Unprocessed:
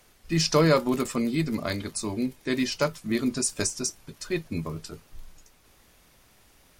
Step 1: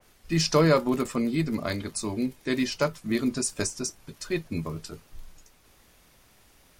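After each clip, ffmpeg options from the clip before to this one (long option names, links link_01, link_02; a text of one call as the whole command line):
ffmpeg -i in.wav -af "adynamicequalizer=threshold=0.00891:dfrequency=2400:dqfactor=0.7:tfrequency=2400:tqfactor=0.7:attack=5:release=100:ratio=0.375:range=2.5:mode=cutabove:tftype=highshelf" out.wav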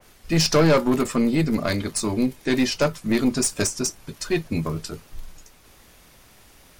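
ffmpeg -i in.wav -af "aeval=exprs='(tanh(10*val(0)+0.35)-tanh(0.35))/10':channel_layout=same,volume=8dB" out.wav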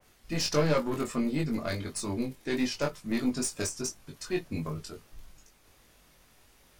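ffmpeg -i in.wav -af "flanger=delay=20:depth=2.2:speed=1.5,volume=-6dB" out.wav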